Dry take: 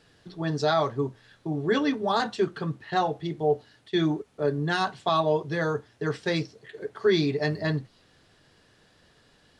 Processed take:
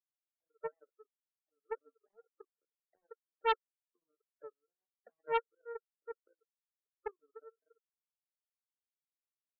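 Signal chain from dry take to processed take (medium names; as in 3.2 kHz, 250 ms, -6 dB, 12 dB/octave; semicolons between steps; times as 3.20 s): auto-wah 460–1200 Hz, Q 20, down, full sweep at -26.5 dBFS; band-pass filter 790 Hz, Q 0.52; power-law waveshaper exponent 3; spectral gate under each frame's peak -15 dB strong; loudspeaker Doppler distortion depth 0.62 ms; trim +6 dB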